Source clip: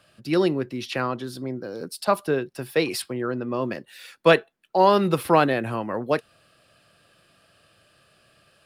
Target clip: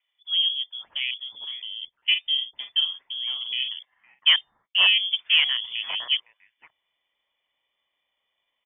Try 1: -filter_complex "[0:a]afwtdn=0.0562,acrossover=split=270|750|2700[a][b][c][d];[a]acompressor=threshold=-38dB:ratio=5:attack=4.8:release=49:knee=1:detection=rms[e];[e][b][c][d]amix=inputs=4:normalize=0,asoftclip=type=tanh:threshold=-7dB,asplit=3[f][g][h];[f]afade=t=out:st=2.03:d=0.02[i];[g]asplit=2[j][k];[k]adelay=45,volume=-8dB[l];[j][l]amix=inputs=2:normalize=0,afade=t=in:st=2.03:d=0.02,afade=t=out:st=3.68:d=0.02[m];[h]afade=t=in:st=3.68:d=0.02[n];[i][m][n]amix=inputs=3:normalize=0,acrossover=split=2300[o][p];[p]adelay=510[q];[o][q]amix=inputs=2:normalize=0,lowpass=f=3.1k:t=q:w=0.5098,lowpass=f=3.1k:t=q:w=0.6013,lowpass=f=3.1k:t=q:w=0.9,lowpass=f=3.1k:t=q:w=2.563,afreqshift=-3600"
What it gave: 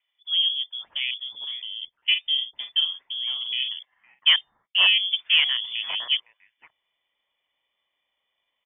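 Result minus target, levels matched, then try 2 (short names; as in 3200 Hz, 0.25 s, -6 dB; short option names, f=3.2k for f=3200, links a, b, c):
compressor: peak gain reduction -7 dB
-filter_complex "[0:a]afwtdn=0.0562,acrossover=split=270|750|2700[a][b][c][d];[a]acompressor=threshold=-47dB:ratio=5:attack=4.8:release=49:knee=1:detection=rms[e];[e][b][c][d]amix=inputs=4:normalize=0,asoftclip=type=tanh:threshold=-7dB,asplit=3[f][g][h];[f]afade=t=out:st=2.03:d=0.02[i];[g]asplit=2[j][k];[k]adelay=45,volume=-8dB[l];[j][l]amix=inputs=2:normalize=0,afade=t=in:st=2.03:d=0.02,afade=t=out:st=3.68:d=0.02[m];[h]afade=t=in:st=3.68:d=0.02[n];[i][m][n]amix=inputs=3:normalize=0,acrossover=split=2300[o][p];[p]adelay=510[q];[o][q]amix=inputs=2:normalize=0,lowpass=f=3.1k:t=q:w=0.5098,lowpass=f=3.1k:t=q:w=0.6013,lowpass=f=3.1k:t=q:w=0.9,lowpass=f=3.1k:t=q:w=2.563,afreqshift=-3600"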